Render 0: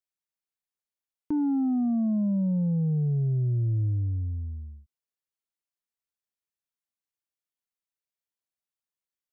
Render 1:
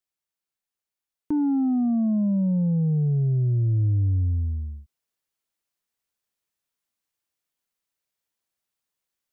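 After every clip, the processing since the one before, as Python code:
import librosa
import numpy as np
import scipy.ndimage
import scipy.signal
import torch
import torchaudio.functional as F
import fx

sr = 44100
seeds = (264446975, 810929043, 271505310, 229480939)

y = fx.rider(x, sr, range_db=4, speed_s=0.5)
y = y * librosa.db_to_amplitude(4.0)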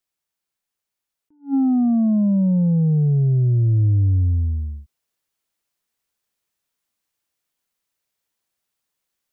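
y = fx.attack_slew(x, sr, db_per_s=270.0)
y = y * librosa.db_to_amplitude(5.0)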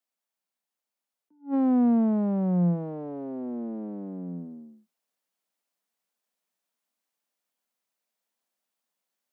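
y = fx.diode_clip(x, sr, knee_db=-23.5)
y = scipy.signal.sosfilt(scipy.signal.cheby1(6, 6, 170.0, 'highpass', fs=sr, output='sos'), y)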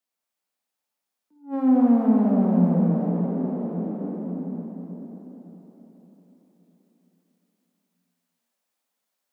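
y = fx.quant_float(x, sr, bits=8)
y = fx.rev_plate(y, sr, seeds[0], rt60_s=4.6, hf_ratio=0.85, predelay_ms=0, drr_db=-3.0)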